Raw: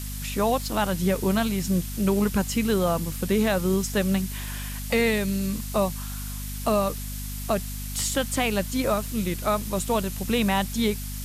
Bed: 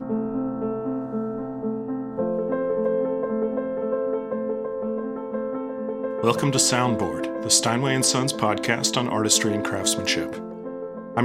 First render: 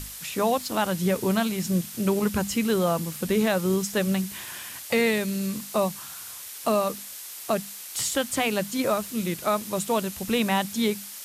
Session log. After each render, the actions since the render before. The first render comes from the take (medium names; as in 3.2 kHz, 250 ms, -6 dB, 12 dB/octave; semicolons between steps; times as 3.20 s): hum notches 50/100/150/200/250 Hz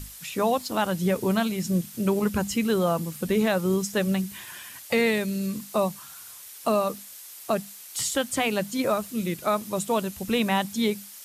noise reduction 6 dB, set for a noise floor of -40 dBFS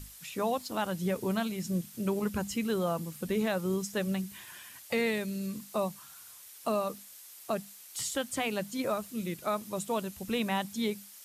trim -7 dB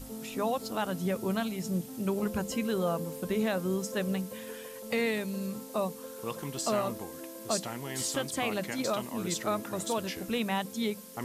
add bed -16.5 dB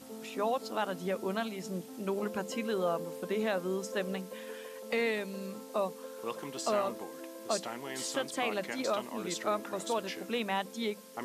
high-pass 280 Hz 12 dB/octave; treble shelf 7.3 kHz -10.5 dB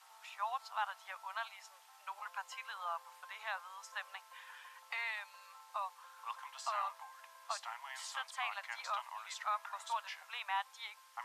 steep high-pass 860 Hz 48 dB/octave; tilt EQ -3.5 dB/octave